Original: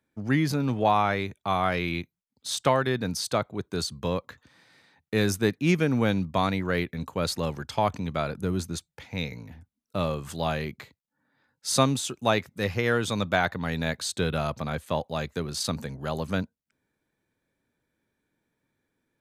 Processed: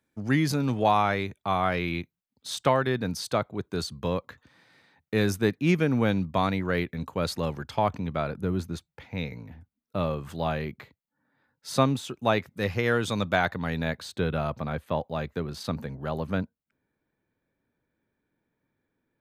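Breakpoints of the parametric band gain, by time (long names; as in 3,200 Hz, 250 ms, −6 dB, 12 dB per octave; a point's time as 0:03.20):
parametric band 7,900 Hz 1.8 octaves
0:00.88 +3 dB
0:01.51 −5.5 dB
0:07.45 −5.5 dB
0:08.10 −12 dB
0:12.05 −12 dB
0:12.75 −3 dB
0:13.53 −3 dB
0:14.12 −15 dB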